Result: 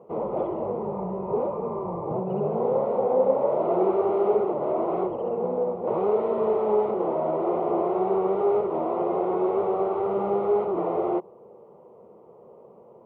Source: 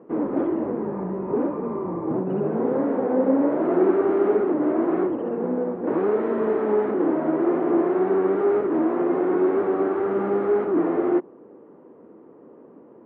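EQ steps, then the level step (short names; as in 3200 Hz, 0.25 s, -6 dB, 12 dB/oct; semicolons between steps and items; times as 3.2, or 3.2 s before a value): fixed phaser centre 690 Hz, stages 4; +3.5 dB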